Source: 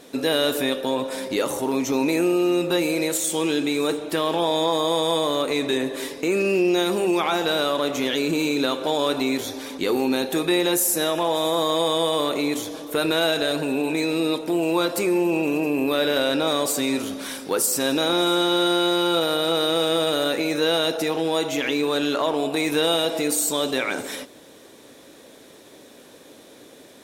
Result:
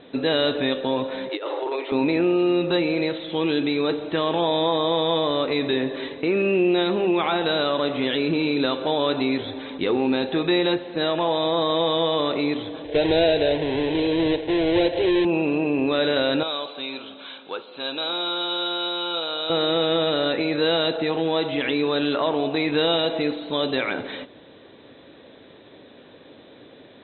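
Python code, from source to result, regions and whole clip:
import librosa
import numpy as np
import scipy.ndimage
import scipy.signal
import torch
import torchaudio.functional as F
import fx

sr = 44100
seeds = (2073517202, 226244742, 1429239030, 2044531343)

y = fx.chain(x, sr, fx.steep_highpass(hz=310.0, slope=96),
    fx.over_compress(threshold_db=-26.0, ratio=-0.5), at=(1.29, 1.92))
y = fx.chain(y, sr, fx.halfwave_hold(),
    fx.fixed_phaser(hz=510.0, stages=4), at=(12.84, 15.25))
y = fx.chain(y, sr, fx.highpass(hz=1300.0, slope=6),
    fx.peak_eq(hz=1900.0, db=-14.0, octaves=0.24), at=(16.43, 19.5))
y = scipy.signal.sosfilt(scipy.signal.cheby1(10, 1.0, 4000.0, 'lowpass', fs=sr, output='sos'), y)
y = fx.peak_eq(y, sr, hz=99.0, db=6.0, octaves=1.6)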